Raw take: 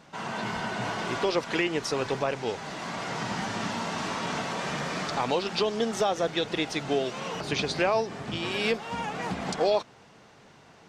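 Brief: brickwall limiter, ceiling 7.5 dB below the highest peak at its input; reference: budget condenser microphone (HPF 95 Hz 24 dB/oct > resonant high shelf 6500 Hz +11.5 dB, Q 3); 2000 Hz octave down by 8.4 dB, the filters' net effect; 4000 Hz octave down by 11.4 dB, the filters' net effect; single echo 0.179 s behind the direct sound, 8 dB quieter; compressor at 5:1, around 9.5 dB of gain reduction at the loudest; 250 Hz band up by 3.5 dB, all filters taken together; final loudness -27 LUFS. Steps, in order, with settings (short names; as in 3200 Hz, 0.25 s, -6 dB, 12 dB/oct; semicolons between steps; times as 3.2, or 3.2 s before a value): bell 250 Hz +5 dB; bell 2000 Hz -8 dB; bell 4000 Hz -7 dB; compressor 5:1, threshold -31 dBFS; limiter -28 dBFS; HPF 95 Hz 24 dB/oct; resonant high shelf 6500 Hz +11.5 dB, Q 3; echo 0.179 s -8 dB; gain +9 dB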